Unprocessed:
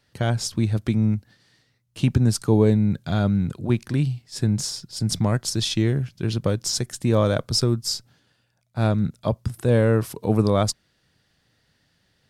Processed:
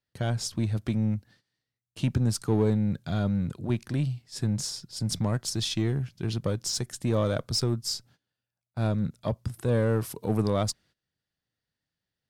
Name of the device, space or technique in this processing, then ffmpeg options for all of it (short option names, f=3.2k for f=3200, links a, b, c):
parallel distortion: -filter_complex "[0:a]agate=range=-17dB:threshold=-50dB:ratio=16:detection=peak,asplit=2[a][b];[b]asoftclip=type=hard:threshold=-21dB,volume=-5dB[c];[a][c]amix=inputs=2:normalize=0,asettb=1/sr,asplit=3[d][e][f];[d]atrim=end=9.894[g];[e]atrim=start=9.89:end=10.42,asetpts=PTS-STARTPTS,afade=t=in:d=0.004:c=qsin,afade=t=out:st=0.526:d=0.004:c=qsin,highshelf=f=8.8k:g=5.5[h];[f]atrim=start=10.416[i];[g][h]acrossfade=d=0.004:c1=hsin:c2=qsin[j];[j][i]acrossfade=d=0.004:c1=qsin:c2=hsin,volume=-8.5dB"